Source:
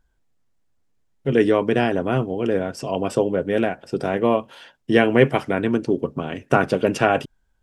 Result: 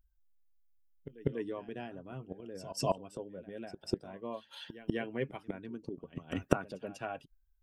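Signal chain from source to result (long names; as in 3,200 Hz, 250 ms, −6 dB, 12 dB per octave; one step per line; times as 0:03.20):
spectral dynamics exaggerated over time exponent 1.5
gate with flip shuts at −22 dBFS, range −25 dB
echo ahead of the sound 195 ms −15 dB
level +5.5 dB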